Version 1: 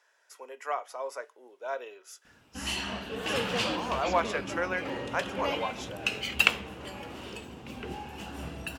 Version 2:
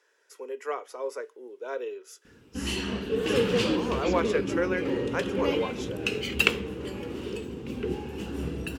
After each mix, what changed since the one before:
master: add resonant low shelf 540 Hz +6.5 dB, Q 3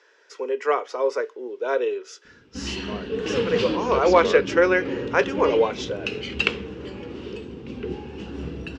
speech +10.5 dB; master: add LPF 5800 Hz 24 dB/oct

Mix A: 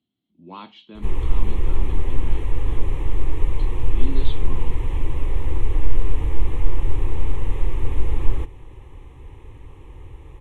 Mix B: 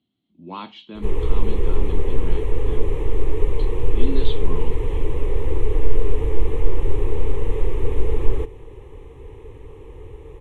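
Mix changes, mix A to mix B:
speech +4.5 dB; background: add bell 440 Hz +14 dB 0.47 oct

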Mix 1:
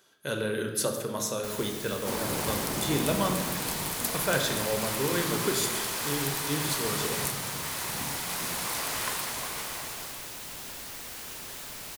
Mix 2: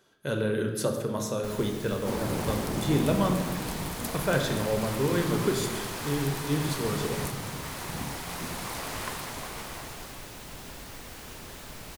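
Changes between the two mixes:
second sound: send -7.5 dB; master: add tilt -2 dB/oct

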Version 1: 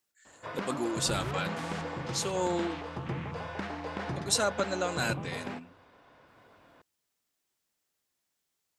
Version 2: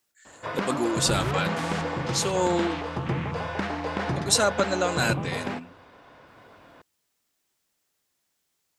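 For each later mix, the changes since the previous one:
speech +6.0 dB; background +7.5 dB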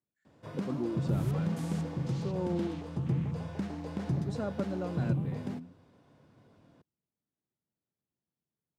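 background: remove LPF 1600 Hz 12 dB/oct; master: add band-pass 150 Hz, Q 1.2

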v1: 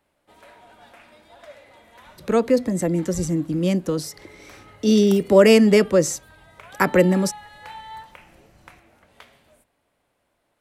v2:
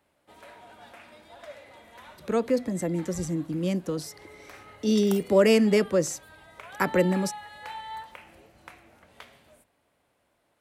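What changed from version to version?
speech -6.5 dB; master: add HPF 47 Hz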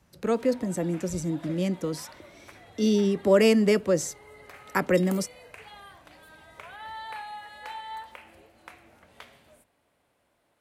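speech: entry -2.05 s; second sound -3.5 dB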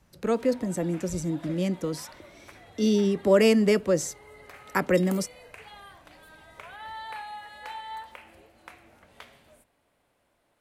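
master: remove HPF 47 Hz

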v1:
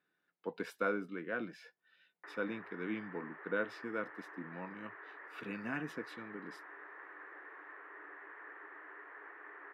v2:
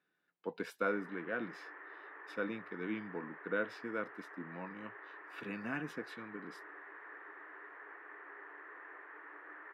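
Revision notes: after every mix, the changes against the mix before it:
background: entry -1.35 s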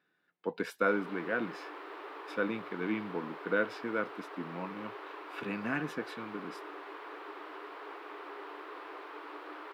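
speech +5.5 dB; background: remove ladder low-pass 1900 Hz, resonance 80%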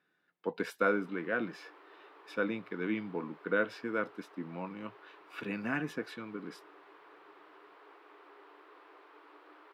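background -11.5 dB

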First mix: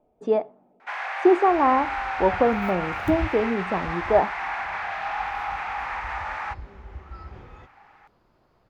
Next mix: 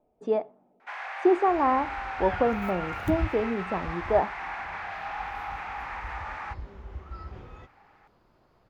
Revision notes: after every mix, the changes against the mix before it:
speech -4.0 dB; first sound -6.0 dB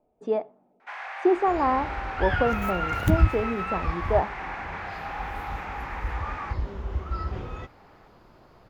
second sound +10.0 dB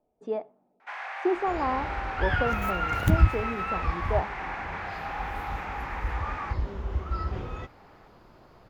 speech -5.0 dB

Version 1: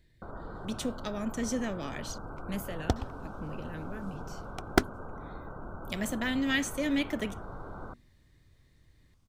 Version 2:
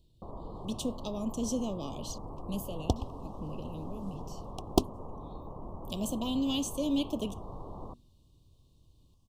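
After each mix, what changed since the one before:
master: add elliptic band-stop 1100–2800 Hz, stop band 40 dB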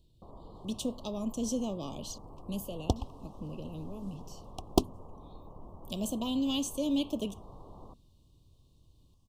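first sound -7.0 dB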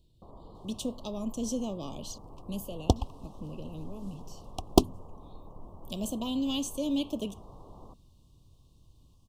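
second sound +5.0 dB

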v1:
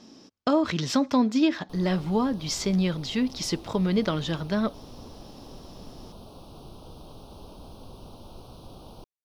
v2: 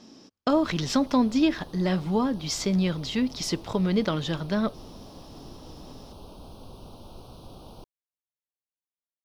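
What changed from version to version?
background: entry -1.20 s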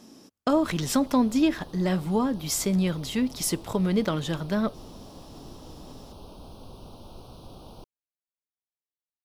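speech: add resonant high shelf 7400 Hz +14 dB, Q 1.5

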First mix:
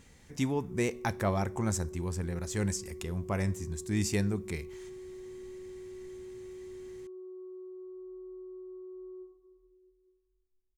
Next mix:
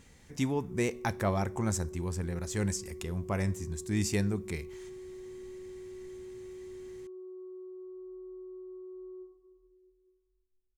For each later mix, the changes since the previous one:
none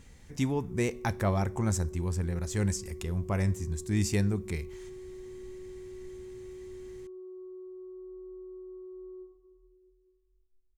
master: add low shelf 87 Hz +9.5 dB

